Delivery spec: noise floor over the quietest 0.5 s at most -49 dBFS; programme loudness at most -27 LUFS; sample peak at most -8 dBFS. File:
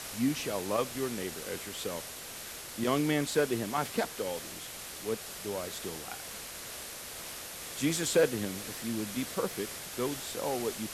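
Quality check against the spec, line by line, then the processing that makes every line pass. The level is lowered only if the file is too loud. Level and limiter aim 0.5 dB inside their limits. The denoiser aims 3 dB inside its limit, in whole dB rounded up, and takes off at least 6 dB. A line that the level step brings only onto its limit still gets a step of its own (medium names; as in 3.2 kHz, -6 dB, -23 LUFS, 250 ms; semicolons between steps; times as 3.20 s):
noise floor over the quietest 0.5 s -43 dBFS: fail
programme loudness -33.5 LUFS: pass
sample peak -15.5 dBFS: pass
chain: noise reduction 9 dB, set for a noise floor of -43 dBFS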